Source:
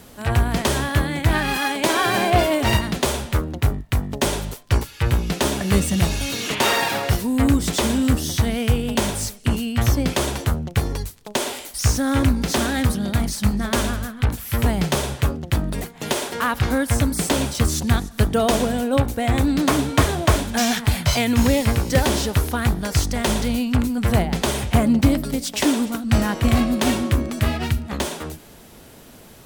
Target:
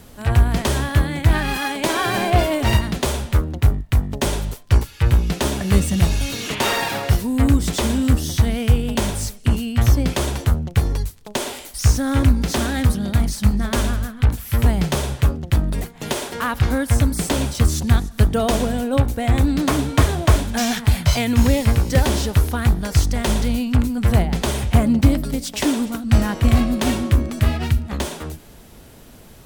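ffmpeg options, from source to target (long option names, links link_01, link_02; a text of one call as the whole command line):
ffmpeg -i in.wav -af "lowshelf=frequency=99:gain=9.5,volume=-1.5dB" out.wav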